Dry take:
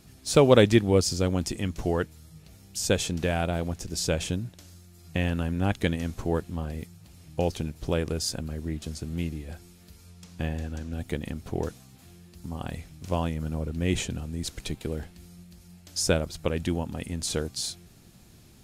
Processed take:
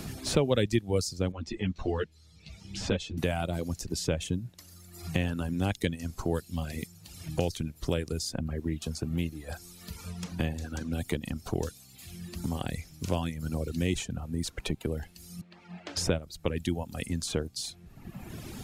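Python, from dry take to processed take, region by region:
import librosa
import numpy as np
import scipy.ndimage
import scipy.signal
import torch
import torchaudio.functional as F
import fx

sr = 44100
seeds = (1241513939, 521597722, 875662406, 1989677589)

y = fx.chain(x, sr, fx.lowpass(hz=4000.0, slope=12),
    fx.ensemble(), at=(1.32, 3.18))
y = fx.chain(y, sr, fx.bandpass_edges(low_hz=270.0, high_hz=2500.0),
    fx.band_widen(depth_pct=40), at=(15.41, 15.97))
y = fx.dereverb_blind(y, sr, rt60_s=1.2)
y = fx.dynamic_eq(y, sr, hz=1200.0, q=0.76, threshold_db=-44.0, ratio=4.0, max_db=-4)
y = fx.band_squash(y, sr, depth_pct=70)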